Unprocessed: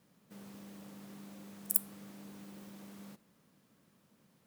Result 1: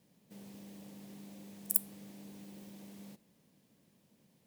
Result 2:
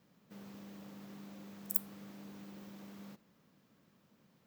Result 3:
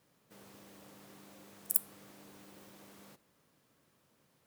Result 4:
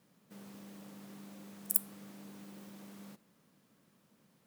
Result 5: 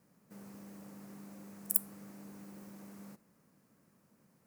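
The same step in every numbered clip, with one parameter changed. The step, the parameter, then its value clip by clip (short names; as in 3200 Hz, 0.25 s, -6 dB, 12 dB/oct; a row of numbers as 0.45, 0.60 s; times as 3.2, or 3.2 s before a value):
bell, frequency: 1300, 10000, 200, 68, 3400 Hz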